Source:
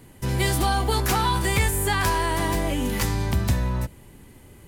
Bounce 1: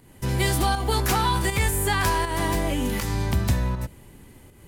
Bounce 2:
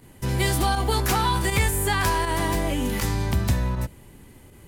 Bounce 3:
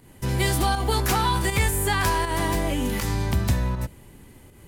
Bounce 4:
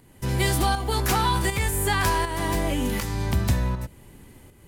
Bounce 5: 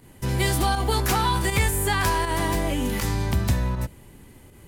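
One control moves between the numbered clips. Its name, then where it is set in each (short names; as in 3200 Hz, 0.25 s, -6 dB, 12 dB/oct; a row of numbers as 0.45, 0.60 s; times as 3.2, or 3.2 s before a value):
pump, release: 230, 62, 143, 483, 92 ms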